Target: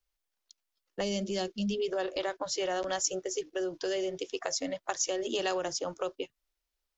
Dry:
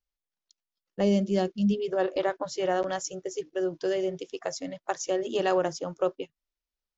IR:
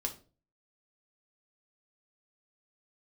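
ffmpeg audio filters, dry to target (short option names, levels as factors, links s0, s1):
-filter_complex "[0:a]equalizer=f=160:w=1.7:g=-12.5,acrossover=split=170|3000[s0][s1][s2];[s1]acompressor=threshold=0.02:ratio=6[s3];[s0][s3][s2]amix=inputs=3:normalize=0,acrossover=split=790[s4][s5];[s4]alimiter=level_in=2.51:limit=0.0631:level=0:latency=1,volume=0.398[s6];[s6][s5]amix=inputs=2:normalize=0,volume=1.88"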